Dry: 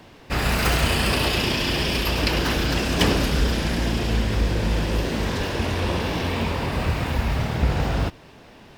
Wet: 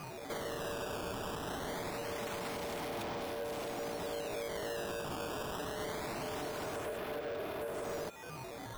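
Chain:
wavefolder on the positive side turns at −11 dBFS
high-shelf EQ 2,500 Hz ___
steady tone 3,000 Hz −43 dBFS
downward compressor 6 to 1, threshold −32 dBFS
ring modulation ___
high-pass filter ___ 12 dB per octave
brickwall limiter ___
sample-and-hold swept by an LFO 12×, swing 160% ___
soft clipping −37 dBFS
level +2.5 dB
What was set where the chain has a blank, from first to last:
−4.5 dB, 520 Hz, 72 Hz, −27 dBFS, 0.24 Hz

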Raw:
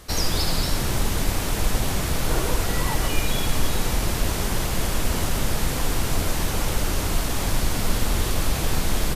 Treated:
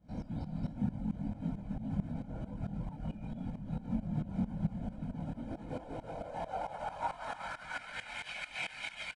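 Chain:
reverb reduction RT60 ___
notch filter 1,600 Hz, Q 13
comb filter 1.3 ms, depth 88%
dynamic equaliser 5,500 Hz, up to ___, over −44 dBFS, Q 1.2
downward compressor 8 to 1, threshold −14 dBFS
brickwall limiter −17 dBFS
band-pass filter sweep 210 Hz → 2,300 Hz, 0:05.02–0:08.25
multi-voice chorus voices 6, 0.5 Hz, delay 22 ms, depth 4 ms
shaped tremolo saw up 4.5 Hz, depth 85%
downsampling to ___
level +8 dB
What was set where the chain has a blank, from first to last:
0.61 s, −6 dB, 22,050 Hz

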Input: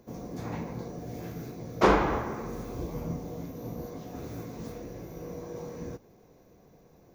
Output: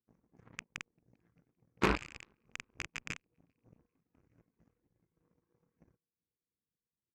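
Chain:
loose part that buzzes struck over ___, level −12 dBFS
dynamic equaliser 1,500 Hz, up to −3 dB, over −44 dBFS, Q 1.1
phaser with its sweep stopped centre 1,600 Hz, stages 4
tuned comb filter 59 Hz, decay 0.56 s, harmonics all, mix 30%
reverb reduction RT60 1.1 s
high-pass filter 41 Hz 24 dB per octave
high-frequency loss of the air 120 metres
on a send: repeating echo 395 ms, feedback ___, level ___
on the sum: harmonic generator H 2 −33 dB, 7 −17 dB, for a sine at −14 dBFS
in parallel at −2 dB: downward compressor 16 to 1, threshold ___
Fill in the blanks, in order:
−32 dBFS, 52%, −20.5 dB, −45 dBFS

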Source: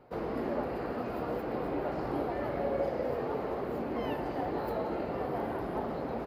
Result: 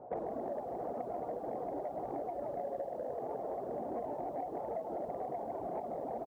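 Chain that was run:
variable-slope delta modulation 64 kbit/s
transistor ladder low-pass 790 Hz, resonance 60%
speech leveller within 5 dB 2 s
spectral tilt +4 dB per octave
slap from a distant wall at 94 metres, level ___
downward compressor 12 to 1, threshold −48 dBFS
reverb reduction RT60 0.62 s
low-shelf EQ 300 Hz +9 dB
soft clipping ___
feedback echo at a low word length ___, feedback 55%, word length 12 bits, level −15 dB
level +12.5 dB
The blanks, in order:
−28 dB, −39.5 dBFS, 153 ms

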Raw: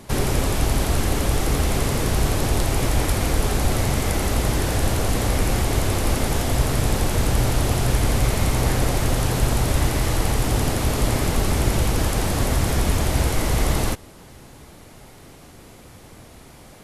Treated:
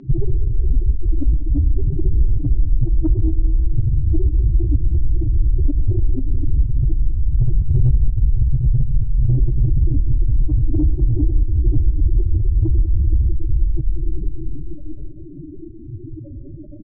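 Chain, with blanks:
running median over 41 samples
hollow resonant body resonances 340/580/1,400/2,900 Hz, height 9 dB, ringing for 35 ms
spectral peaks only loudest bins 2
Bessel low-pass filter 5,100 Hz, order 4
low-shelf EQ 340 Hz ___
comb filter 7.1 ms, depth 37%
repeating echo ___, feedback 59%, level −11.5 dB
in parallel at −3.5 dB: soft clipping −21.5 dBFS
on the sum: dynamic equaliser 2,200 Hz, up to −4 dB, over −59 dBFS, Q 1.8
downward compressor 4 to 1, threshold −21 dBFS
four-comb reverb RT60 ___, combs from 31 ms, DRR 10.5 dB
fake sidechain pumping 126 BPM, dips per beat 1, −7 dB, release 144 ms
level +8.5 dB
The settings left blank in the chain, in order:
+6.5 dB, 195 ms, 3.3 s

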